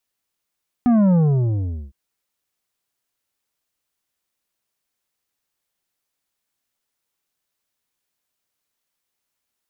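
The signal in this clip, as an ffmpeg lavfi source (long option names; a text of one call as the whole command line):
ffmpeg -f lavfi -i "aevalsrc='0.224*clip((1.06-t)/0.79,0,1)*tanh(2.66*sin(2*PI*250*1.06/log(65/250)*(exp(log(65/250)*t/1.06)-1)))/tanh(2.66)':duration=1.06:sample_rate=44100" out.wav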